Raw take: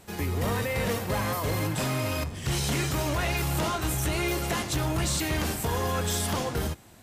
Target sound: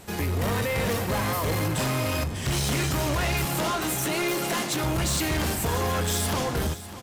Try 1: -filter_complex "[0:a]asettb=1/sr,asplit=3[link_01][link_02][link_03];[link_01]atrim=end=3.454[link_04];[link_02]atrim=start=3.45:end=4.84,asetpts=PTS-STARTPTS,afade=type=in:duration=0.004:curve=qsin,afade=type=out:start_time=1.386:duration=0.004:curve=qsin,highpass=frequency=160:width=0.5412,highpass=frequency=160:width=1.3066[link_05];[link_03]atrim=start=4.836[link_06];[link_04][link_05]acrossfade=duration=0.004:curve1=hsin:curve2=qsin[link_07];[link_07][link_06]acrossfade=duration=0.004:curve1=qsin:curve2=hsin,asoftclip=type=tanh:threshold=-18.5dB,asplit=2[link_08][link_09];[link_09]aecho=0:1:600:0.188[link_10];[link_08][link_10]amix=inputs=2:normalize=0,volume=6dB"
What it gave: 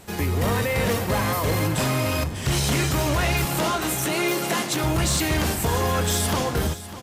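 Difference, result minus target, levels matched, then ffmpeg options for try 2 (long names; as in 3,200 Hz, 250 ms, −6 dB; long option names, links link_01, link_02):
soft clipping: distortion −14 dB
-filter_complex "[0:a]asettb=1/sr,asplit=3[link_01][link_02][link_03];[link_01]atrim=end=3.454[link_04];[link_02]atrim=start=3.45:end=4.84,asetpts=PTS-STARTPTS,afade=type=in:duration=0.004:curve=qsin,afade=type=out:start_time=1.386:duration=0.004:curve=qsin,highpass=frequency=160:width=0.5412,highpass=frequency=160:width=1.3066[link_05];[link_03]atrim=start=4.836[link_06];[link_04][link_05]acrossfade=duration=0.004:curve1=hsin:curve2=qsin[link_07];[link_07][link_06]acrossfade=duration=0.004:curve1=qsin:curve2=hsin,asoftclip=type=tanh:threshold=-28dB,asplit=2[link_08][link_09];[link_09]aecho=0:1:600:0.188[link_10];[link_08][link_10]amix=inputs=2:normalize=0,volume=6dB"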